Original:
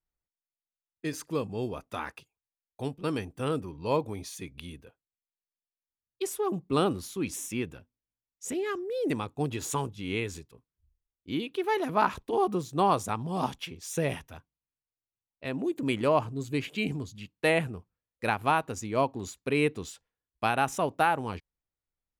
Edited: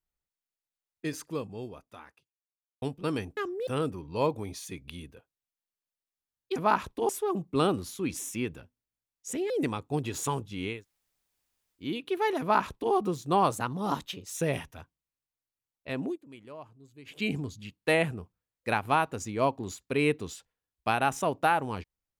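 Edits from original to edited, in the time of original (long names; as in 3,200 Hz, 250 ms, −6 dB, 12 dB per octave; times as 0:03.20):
0:01.05–0:02.82: fade out quadratic
0:08.67–0:08.97: move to 0:03.37
0:10.20–0:11.30: fill with room tone, crossfade 0.24 s
0:11.87–0:12.40: duplicate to 0:06.26
0:12.98–0:13.90: play speed 111%
0:15.62–0:16.74: duck −20.5 dB, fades 0.13 s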